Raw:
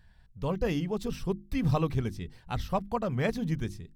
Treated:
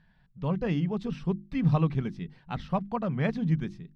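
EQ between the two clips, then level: LPF 3300 Hz 12 dB/oct; resonant low shelf 120 Hz -7.5 dB, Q 3; bell 450 Hz -3 dB 0.95 oct; 0.0 dB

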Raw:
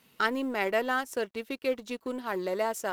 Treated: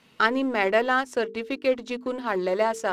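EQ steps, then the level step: air absorption 70 m; notches 50/100/150/200/250/300/350/400/450 Hz; +6.5 dB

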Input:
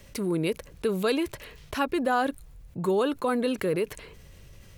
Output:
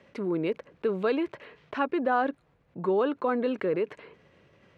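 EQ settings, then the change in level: BPF 220–2100 Hz; 0.0 dB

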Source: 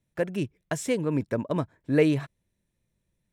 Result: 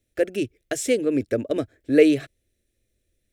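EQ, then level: fixed phaser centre 400 Hz, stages 4; +7.0 dB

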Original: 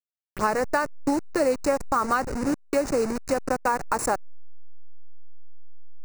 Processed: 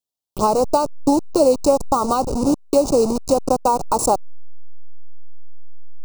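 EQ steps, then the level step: Chebyshev band-stop 930–3500 Hz, order 2; +8.5 dB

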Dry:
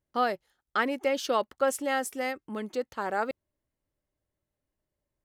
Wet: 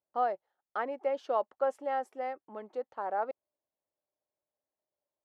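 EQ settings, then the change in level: band-pass 720 Hz, Q 1.9; 0.0 dB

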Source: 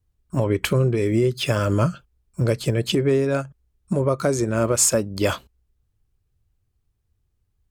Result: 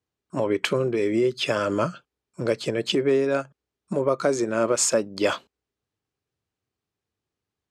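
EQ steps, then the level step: BPF 260–6500 Hz; 0.0 dB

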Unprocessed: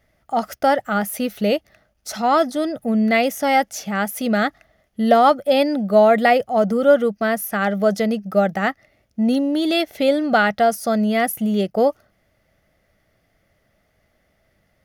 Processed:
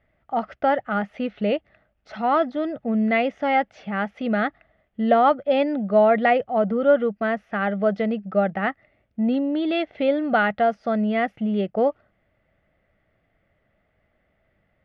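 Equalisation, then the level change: LPF 3000 Hz 24 dB/oct; -3.5 dB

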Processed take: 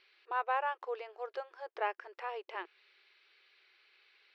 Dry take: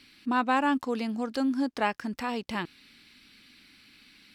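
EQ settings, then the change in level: dynamic EQ 4200 Hz, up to -7 dB, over -53 dBFS, Q 2.1; brick-wall FIR high-pass 350 Hz; air absorption 260 m; -5.0 dB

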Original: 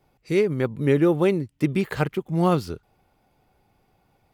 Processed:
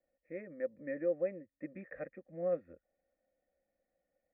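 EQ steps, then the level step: vocal tract filter e; fixed phaser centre 620 Hz, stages 8; -3.0 dB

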